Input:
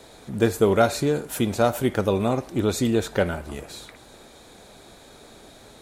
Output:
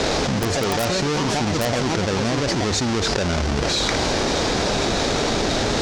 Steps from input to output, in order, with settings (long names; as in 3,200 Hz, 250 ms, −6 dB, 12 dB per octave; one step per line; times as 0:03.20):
each half-wave held at its own peak
delay with pitch and tempo change per echo 82 ms, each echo +4 semitones, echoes 3, each echo −6 dB
transistor ladder low-pass 6,900 Hz, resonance 40%
wrap-around overflow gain 12 dB
envelope flattener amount 100%
level −3.5 dB